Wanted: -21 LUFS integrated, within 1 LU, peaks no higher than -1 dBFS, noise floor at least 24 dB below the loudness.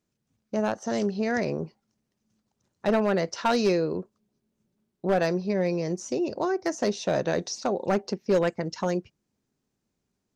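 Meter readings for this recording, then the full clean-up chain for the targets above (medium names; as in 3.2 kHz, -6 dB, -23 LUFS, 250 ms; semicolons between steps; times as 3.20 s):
clipped samples 0.4%; clipping level -16.0 dBFS; loudness -27.5 LUFS; peak level -16.0 dBFS; loudness target -21.0 LUFS
-> clip repair -16 dBFS; trim +6.5 dB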